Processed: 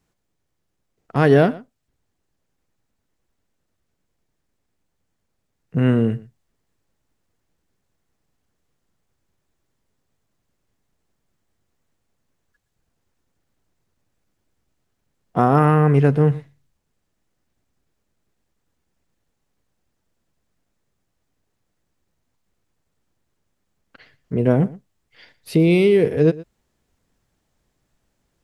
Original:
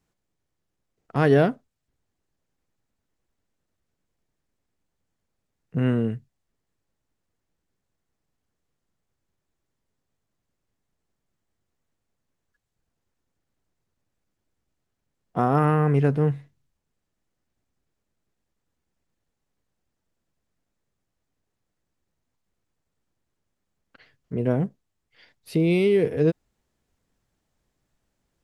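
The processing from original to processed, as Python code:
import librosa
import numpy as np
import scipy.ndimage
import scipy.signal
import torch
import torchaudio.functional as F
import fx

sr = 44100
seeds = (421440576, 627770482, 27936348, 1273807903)

p1 = fx.rider(x, sr, range_db=10, speed_s=0.5)
p2 = x + (p1 * librosa.db_to_amplitude(0.0))
y = p2 + 10.0 ** (-20.0 / 20.0) * np.pad(p2, (int(118 * sr / 1000.0), 0))[:len(p2)]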